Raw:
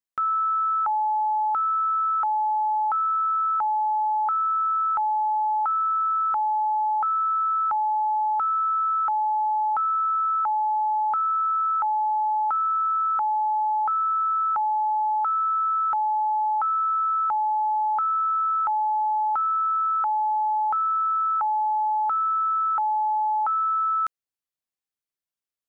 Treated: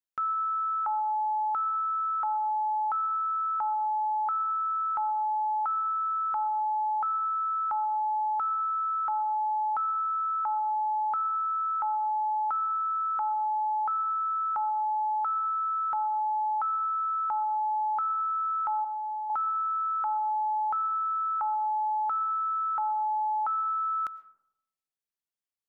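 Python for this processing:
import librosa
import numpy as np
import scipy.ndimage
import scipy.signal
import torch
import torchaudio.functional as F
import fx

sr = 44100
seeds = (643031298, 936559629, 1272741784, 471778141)

y = fx.notch(x, sr, hz=840.0, q=15.0, at=(18.84, 19.3))
y = fx.rev_freeverb(y, sr, rt60_s=0.85, hf_ratio=0.35, predelay_ms=70, drr_db=18.0)
y = y * librosa.db_to_amplitude(-5.0)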